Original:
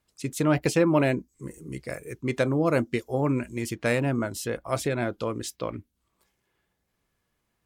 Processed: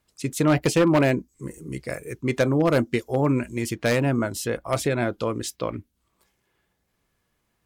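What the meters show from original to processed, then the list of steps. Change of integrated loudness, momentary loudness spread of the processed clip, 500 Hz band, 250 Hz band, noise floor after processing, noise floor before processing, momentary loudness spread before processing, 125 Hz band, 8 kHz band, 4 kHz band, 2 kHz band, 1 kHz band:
+3.0 dB, 14 LU, +3.0 dB, +3.0 dB, -74 dBFS, -77 dBFS, 14 LU, +3.5 dB, +3.5 dB, +4.5 dB, +3.0 dB, +3.0 dB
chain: wavefolder -15 dBFS; gain +3.5 dB

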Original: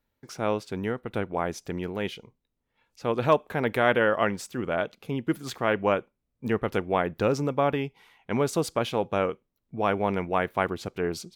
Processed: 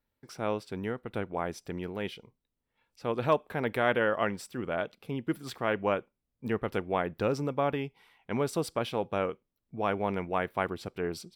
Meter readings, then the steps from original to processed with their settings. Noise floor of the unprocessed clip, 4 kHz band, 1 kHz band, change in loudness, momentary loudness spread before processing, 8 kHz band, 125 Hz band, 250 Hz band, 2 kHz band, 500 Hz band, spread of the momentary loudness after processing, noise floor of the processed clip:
-80 dBFS, -4.5 dB, -4.5 dB, -4.5 dB, 9 LU, -6.0 dB, -4.5 dB, -4.5 dB, -4.5 dB, -4.5 dB, 9 LU, -85 dBFS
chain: notch 6600 Hz, Q 6.4; gain -4.5 dB

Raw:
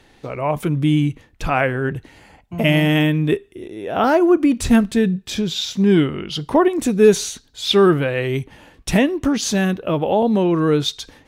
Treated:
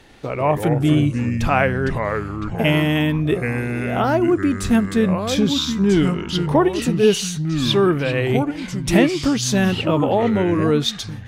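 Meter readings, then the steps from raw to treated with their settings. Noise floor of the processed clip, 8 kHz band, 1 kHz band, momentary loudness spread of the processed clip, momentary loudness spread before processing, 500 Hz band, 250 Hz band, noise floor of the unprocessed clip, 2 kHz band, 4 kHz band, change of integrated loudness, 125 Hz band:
-31 dBFS, 0.0 dB, 0.0 dB, 6 LU, 12 LU, -1.5 dB, -0.5 dB, -53 dBFS, +0.5 dB, 0.0 dB, -0.5 dB, +1.5 dB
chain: vocal rider within 4 dB 0.5 s; echoes that change speed 92 ms, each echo -4 st, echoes 3, each echo -6 dB; gain -1 dB

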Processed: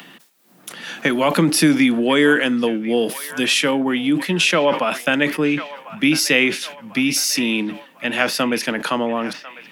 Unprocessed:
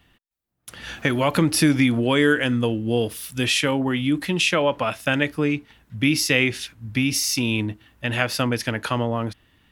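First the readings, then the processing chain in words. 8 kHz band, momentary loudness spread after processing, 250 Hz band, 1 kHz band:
+3.5 dB, 11 LU, +3.5 dB, +4.0 dB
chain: steep high-pass 160 Hz 48 dB/oct; upward compressor, threshold -34 dBFS; on a send: band-limited delay 1.048 s, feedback 47%, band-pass 1400 Hz, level -14 dB; on the sum: sustainer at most 120 dB/s; gain +3.5 dB

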